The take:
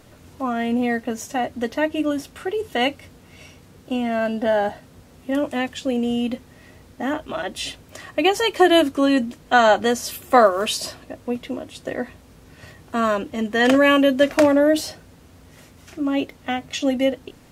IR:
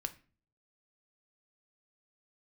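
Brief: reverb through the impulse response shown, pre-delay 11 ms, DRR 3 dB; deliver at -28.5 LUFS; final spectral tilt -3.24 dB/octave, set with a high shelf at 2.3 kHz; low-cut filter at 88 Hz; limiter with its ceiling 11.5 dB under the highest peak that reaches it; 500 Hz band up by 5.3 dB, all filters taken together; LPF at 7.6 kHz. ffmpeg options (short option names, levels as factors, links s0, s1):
-filter_complex "[0:a]highpass=88,lowpass=7600,equalizer=f=500:t=o:g=7,highshelf=f=2300:g=-5.5,alimiter=limit=0.266:level=0:latency=1,asplit=2[s0][s1];[1:a]atrim=start_sample=2205,adelay=11[s2];[s1][s2]afir=irnorm=-1:irlink=0,volume=0.794[s3];[s0][s3]amix=inputs=2:normalize=0,volume=0.376"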